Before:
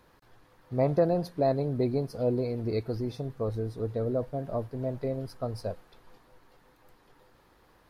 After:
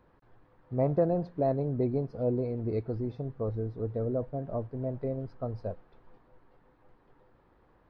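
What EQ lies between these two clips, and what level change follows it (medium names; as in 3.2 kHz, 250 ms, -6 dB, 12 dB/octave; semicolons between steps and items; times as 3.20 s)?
tape spacing loss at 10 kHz 39 dB; 0.0 dB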